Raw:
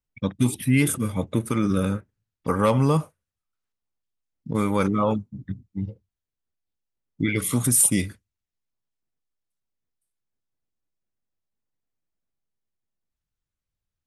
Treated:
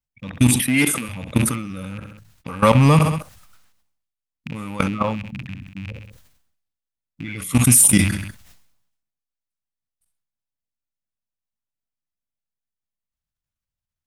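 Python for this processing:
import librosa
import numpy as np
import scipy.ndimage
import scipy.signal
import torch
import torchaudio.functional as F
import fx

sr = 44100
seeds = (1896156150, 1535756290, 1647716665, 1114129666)

p1 = fx.rattle_buzz(x, sr, strikes_db=-32.0, level_db=-25.0)
p2 = np.clip(p1, -10.0 ** (-15.5 / 20.0), 10.0 ** (-15.5 / 20.0))
p3 = p1 + (p2 * 10.0 ** (-8.0 / 20.0))
p4 = fx.peak_eq(p3, sr, hz=390.0, db=-10.5, octaves=0.54)
p5 = fx.level_steps(p4, sr, step_db=19)
p6 = fx.highpass(p5, sr, hz=270.0, slope=12, at=(0.6, 1.09))
p7 = p6 + fx.echo_feedback(p6, sr, ms=65, feedback_pct=39, wet_db=-21.5, dry=0)
p8 = fx.sustainer(p7, sr, db_per_s=64.0)
y = p8 * 10.0 ** (7.0 / 20.0)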